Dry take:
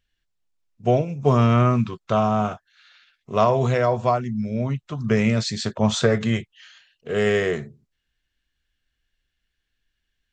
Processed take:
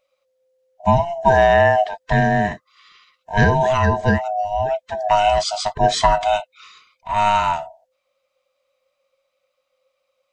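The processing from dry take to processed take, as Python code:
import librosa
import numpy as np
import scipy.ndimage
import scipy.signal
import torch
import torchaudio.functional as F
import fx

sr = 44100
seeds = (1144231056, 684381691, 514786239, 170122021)

y = fx.band_swap(x, sr, width_hz=500)
y = y * 10.0 ** (3.5 / 20.0)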